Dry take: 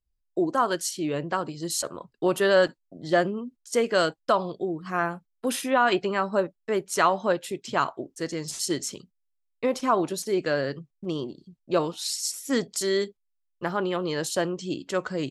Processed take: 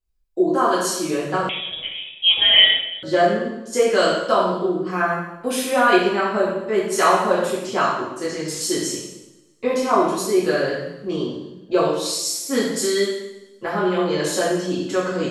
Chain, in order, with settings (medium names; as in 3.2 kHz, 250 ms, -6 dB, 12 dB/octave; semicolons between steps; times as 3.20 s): two-slope reverb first 0.84 s, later 2.5 s, from -28 dB, DRR -9 dB; 1.49–3.03 s: frequency inversion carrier 3.6 kHz; on a send: filtered feedback delay 112 ms, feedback 50%, low-pass 1.2 kHz, level -13.5 dB; on the sum: trim -3.5 dB